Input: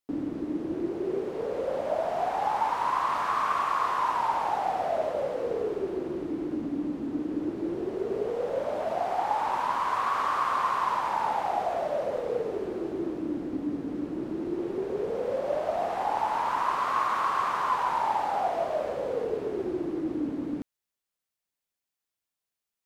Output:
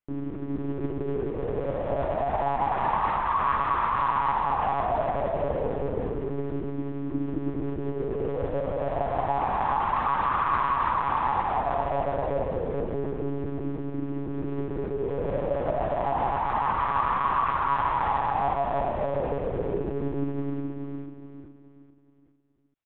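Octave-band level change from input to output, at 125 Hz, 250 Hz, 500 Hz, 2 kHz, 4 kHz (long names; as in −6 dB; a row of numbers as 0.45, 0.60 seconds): +13.0, 0.0, +1.0, +1.5, −3.0 decibels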